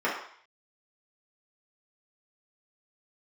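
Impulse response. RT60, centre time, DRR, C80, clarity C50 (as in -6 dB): 0.55 s, 40 ms, -7.5 dB, 7.5 dB, 4.0 dB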